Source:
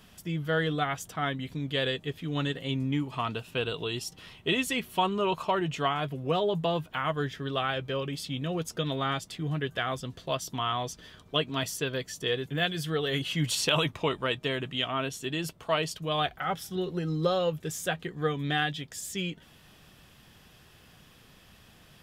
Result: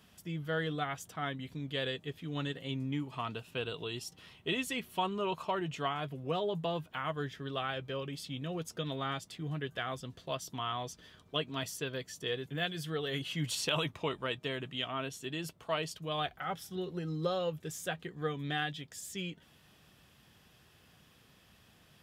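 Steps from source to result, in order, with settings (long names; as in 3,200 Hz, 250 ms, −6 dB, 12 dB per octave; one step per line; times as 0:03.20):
high-pass filter 51 Hz
level −6.5 dB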